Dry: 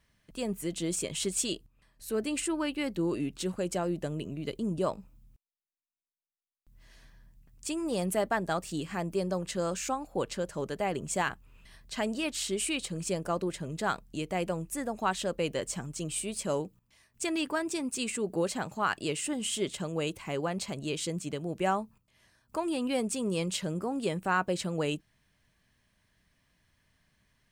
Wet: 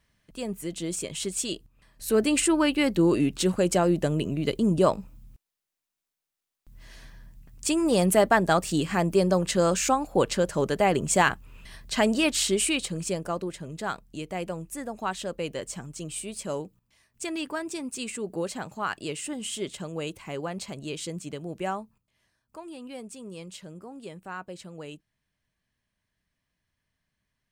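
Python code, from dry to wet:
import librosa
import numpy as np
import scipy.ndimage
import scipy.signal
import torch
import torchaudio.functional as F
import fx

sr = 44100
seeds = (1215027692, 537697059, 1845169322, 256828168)

y = fx.gain(x, sr, db=fx.line((1.43, 0.5), (2.08, 9.0), (12.35, 9.0), (13.53, -1.0), (21.55, -1.0), (22.56, -10.0)))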